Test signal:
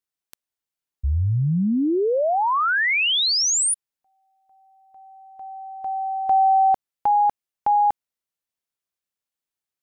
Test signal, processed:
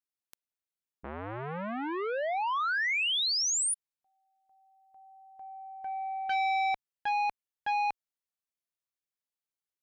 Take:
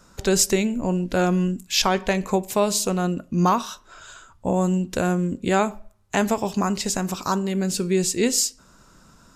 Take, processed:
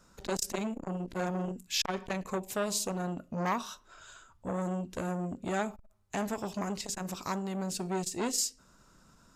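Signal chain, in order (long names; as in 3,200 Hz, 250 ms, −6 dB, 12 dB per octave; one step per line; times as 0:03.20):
saturating transformer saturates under 1,300 Hz
level −8.5 dB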